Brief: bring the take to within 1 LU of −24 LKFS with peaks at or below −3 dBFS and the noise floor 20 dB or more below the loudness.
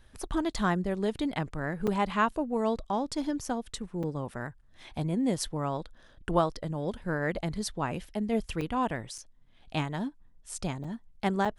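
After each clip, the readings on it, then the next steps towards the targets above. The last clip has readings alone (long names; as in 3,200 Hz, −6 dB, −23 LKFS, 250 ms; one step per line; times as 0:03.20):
number of dropouts 6; longest dropout 5.3 ms; integrated loudness −32.0 LKFS; sample peak −12.0 dBFS; target loudness −24.0 LKFS
→ repair the gap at 0:01.87/0:04.03/0:08.61/0:09.18/0:10.84/0:11.45, 5.3 ms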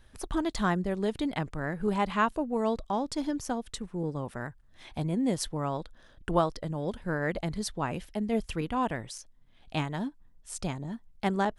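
number of dropouts 0; integrated loudness −32.0 LKFS; sample peak −12.0 dBFS; target loudness −24.0 LKFS
→ level +8 dB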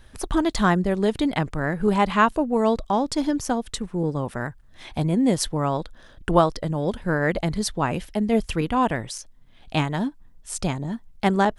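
integrated loudness −24.0 LKFS; sample peak −4.0 dBFS; background noise floor −50 dBFS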